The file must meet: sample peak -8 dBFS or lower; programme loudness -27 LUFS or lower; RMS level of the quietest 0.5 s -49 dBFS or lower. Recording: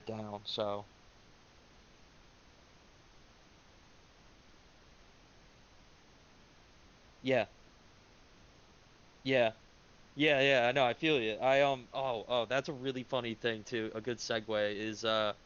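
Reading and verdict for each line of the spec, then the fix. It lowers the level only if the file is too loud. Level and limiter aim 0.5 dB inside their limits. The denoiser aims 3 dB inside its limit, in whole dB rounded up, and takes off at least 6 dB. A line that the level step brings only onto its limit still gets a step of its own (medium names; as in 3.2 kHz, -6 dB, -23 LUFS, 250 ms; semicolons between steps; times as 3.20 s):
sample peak -13.0 dBFS: pass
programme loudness -33.0 LUFS: pass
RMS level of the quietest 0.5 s -61 dBFS: pass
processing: none needed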